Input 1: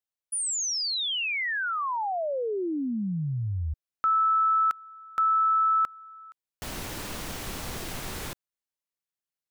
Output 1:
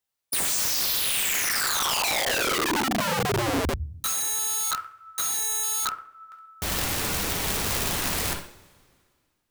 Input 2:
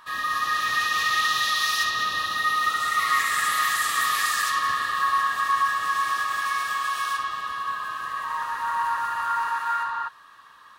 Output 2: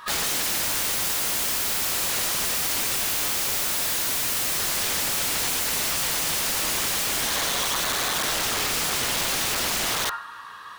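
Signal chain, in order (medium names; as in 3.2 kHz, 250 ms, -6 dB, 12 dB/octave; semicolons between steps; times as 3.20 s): flutter echo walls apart 11.6 m, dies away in 0.35 s; two-slope reverb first 0.41 s, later 2 s, from -22 dB, DRR 1 dB; integer overflow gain 27 dB; trim +6.5 dB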